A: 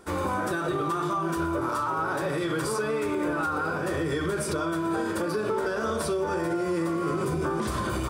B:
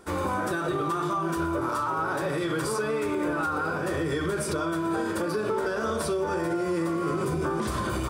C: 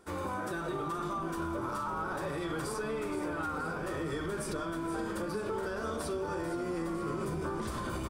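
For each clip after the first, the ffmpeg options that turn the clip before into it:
ffmpeg -i in.wav -af anull out.wav
ffmpeg -i in.wav -filter_complex "[0:a]asplit=8[link_01][link_02][link_03][link_04][link_05][link_06][link_07][link_08];[link_02]adelay=473,afreqshift=-130,volume=-11dB[link_09];[link_03]adelay=946,afreqshift=-260,volume=-15.6dB[link_10];[link_04]adelay=1419,afreqshift=-390,volume=-20.2dB[link_11];[link_05]adelay=1892,afreqshift=-520,volume=-24.7dB[link_12];[link_06]adelay=2365,afreqshift=-650,volume=-29.3dB[link_13];[link_07]adelay=2838,afreqshift=-780,volume=-33.9dB[link_14];[link_08]adelay=3311,afreqshift=-910,volume=-38.5dB[link_15];[link_01][link_09][link_10][link_11][link_12][link_13][link_14][link_15]amix=inputs=8:normalize=0,volume=-8dB" out.wav

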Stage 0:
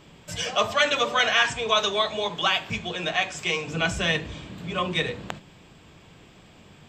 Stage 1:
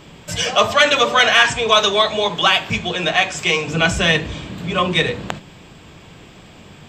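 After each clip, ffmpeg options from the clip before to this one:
ffmpeg -i in.wav -af "acontrast=77,volume=2dB" out.wav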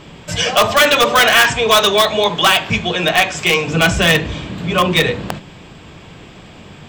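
ffmpeg -i in.wav -filter_complex "[0:a]highshelf=frequency=8800:gain=-9,asplit=2[link_01][link_02];[link_02]aeval=exprs='(mod(2.51*val(0)+1,2)-1)/2.51':channel_layout=same,volume=-7dB[link_03];[link_01][link_03]amix=inputs=2:normalize=0,volume=1dB" out.wav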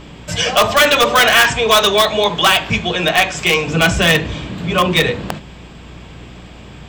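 ffmpeg -i in.wav -af "aeval=exprs='val(0)+0.0126*(sin(2*PI*60*n/s)+sin(2*PI*2*60*n/s)/2+sin(2*PI*3*60*n/s)/3+sin(2*PI*4*60*n/s)/4+sin(2*PI*5*60*n/s)/5)':channel_layout=same" out.wav

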